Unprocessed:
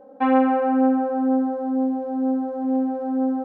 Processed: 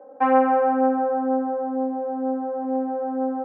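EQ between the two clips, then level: three-band isolator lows -21 dB, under 310 Hz, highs -20 dB, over 2300 Hz; +3.0 dB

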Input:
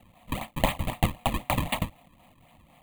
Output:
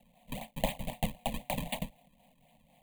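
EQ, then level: fixed phaser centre 340 Hz, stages 6; -5.0 dB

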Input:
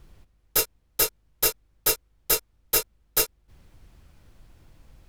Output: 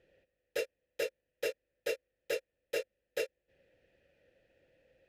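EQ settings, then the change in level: vowel filter e; low shelf 150 Hz +3.5 dB; +4.5 dB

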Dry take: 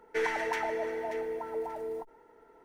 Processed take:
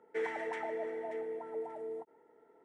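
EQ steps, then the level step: speaker cabinet 160–8200 Hz, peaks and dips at 1000 Hz -6 dB, 1500 Hz -6 dB, 2600 Hz -6 dB, 6200 Hz -9 dB; bell 4500 Hz -13 dB 0.65 oct; -4.0 dB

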